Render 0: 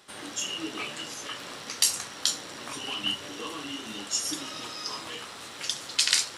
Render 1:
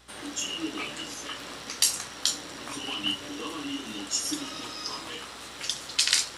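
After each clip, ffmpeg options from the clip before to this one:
-af "adynamicequalizer=threshold=0.002:dfrequency=290:dqfactor=5.7:tfrequency=290:tqfactor=5.7:attack=5:release=100:ratio=0.375:range=3:mode=boostabove:tftype=bell,aeval=exprs='val(0)+0.001*(sin(2*PI*60*n/s)+sin(2*PI*2*60*n/s)/2+sin(2*PI*3*60*n/s)/3+sin(2*PI*4*60*n/s)/4+sin(2*PI*5*60*n/s)/5)':c=same"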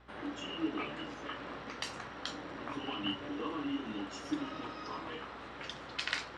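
-af "lowpass=1.8k,volume=-1dB"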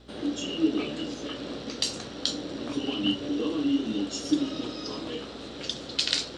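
-af "equalizer=f=250:t=o:w=1:g=5,equalizer=f=500:t=o:w=1:g=4,equalizer=f=1k:t=o:w=1:g=-10,equalizer=f=2k:t=o:w=1:g=-9,equalizer=f=4k:t=o:w=1:g=9,equalizer=f=8k:t=o:w=1:g=8,volume=7dB"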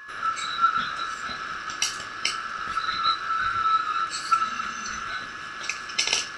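-af "afftfilt=real='real(if(lt(b,960),b+48*(1-2*mod(floor(b/48),2)),b),0)':imag='imag(if(lt(b,960),b+48*(1-2*mod(floor(b/48),2)),b),0)':win_size=2048:overlap=0.75,aeval=exprs='val(0)+0.00708*sin(2*PI*1700*n/s)':c=same,volume=2.5dB"

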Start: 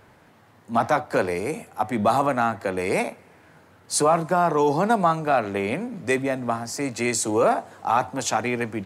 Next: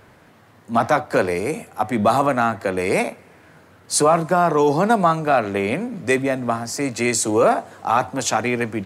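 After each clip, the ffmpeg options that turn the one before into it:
-af "equalizer=f=860:w=5.6:g=-3.5,volume=4dB"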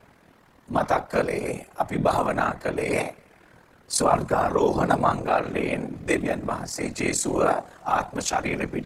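-af "aeval=exprs='val(0)*sin(2*PI*20*n/s)':c=same,afftfilt=real='hypot(re,im)*cos(2*PI*random(0))':imag='hypot(re,im)*sin(2*PI*random(1))':win_size=512:overlap=0.75,volume=4dB"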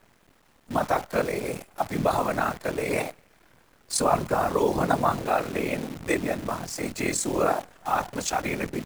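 -af "acrusher=bits=7:dc=4:mix=0:aa=0.000001,volume=-2dB"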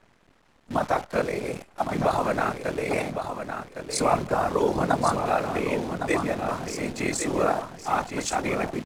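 -af "adynamicsmooth=sensitivity=8:basefreq=7.8k,aecho=1:1:1110|2220|3330:0.422|0.0886|0.0186"

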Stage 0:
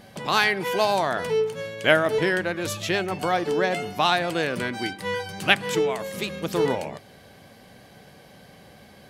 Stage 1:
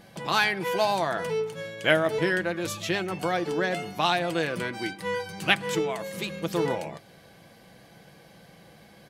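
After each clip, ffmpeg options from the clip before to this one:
-af "aecho=1:1:6:0.38,volume=-3.5dB"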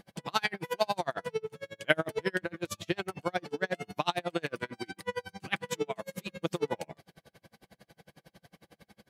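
-af "aeval=exprs='val(0)*pow(10,-37*(0.5-0.5*cos(2*PI*11*n/s))/20)':c=same"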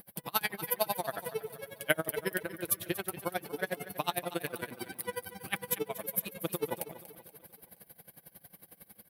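-af "aexciter=amount=11.4:drive=8.3:freq=10k,aecho=1:1:238|476|714|952|1190:0.178|0.0907|0.0463|0.0236|0.012,volume=-3dB"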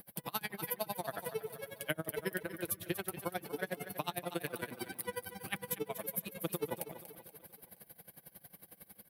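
-filter_complex "[0:a]acrossover=split=300[a][b];[b]acompressor=threshold=-34dB:ratio=4[c];[a][c]amix=inputs=2:normalize=0,volume=-1dB"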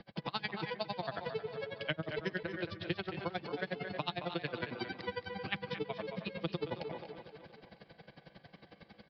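-filter_complex "[0:a]asplit=2[a][b];[b]adelay=220,highpass=300,lowpass=3.4k,asoftclip=type=hard:threshold=-25dB,volume=-11dB[c];[a][c]amix=inputs=2:normalize=0,acrossover=split=160|3000[d][e][f];[e]acompressor=threshold=-43dB:ratio=2.5[g];[d][g][f]amix=inputs=3:normalize=0,aresample=11025,aresample=44100,volume=5.5dB"

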